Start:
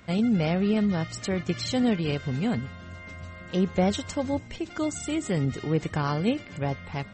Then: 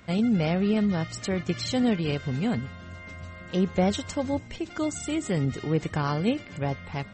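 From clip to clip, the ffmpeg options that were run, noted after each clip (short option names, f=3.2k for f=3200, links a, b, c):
-af anull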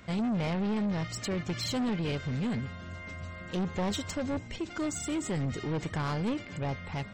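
-af "asoftclip=type=tanh:threshold=-27dB"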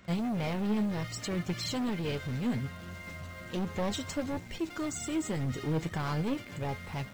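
-filter_complex "[0:a]asplit=2[a][b];[b]acrusher=bits=6:mix=0:aa=0.000001,volume=-7.5dB[c];[a][c]amix=inputs=2:normalize=0,flanger=delay=5.1:depth=4.6:regen=61:speed=0.67:shape=triangular"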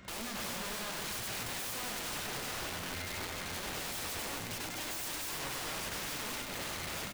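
-filter_complex "[0:a]aeval=exprs='(mod(84.1*val(0)+1,2)-1)/84.1':c=same,asplit=2[a][b];[b]aecho=0:1:99.13|274.1:0.562|0.447[c];[a][c]amix=inputs=2:normalize=0,volume=2.5dB"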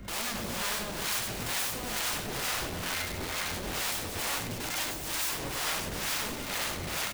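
-filter_complex "[0:a]aeval=exprs='val(0)+0.00178*(sin(2*PI*50*n/s)+sin(2*PI*2*50*n/s)/2+sin(2*PI*3*50*n/s)/3+sin(2*PI*4*50*n/s)/4+sin(2*PI*5*50*n/s)/5)':c=same,acrossover=split=610[a][b];[a]aeval=exprs='val(0)*(1-0.7/2+0.7/2*cos(2*PI*2.2*n/s))':c=same[c];[b]aeval=exprs='val(0)*(1-0.7/2-0.7/2*cos(2*PI*2.2*n/s))':c=same[d];[c][d]amix=inputs=2:normalize=0,acrossover=split=330[e][f];[f]acrusher=bits=2:mode=log:mix=0:aa=0.000001[g];[e][g]amix=inputs=2:normalize=0,volume=8.5dB"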